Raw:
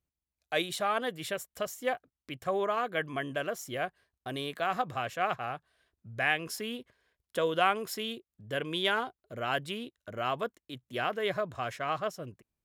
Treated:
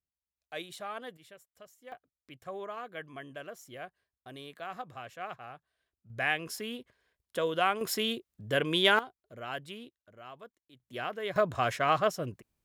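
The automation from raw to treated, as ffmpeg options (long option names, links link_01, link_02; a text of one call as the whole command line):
ffmpeg -i in.wav -af "asetnsamples=nb_out_samples=441:pad=0,asendcmd='1.17 volume volume -19dB;1.92 volume volume -10dB;6.1 volume volume -1.5dB;7.81 volume volume 5dB;8.99 volume volume -7dB;9.95 volume volume -16dB;10.8 volume volume -4.5dB;11.36 volume volume 6dB',volume=-10dB" out.wav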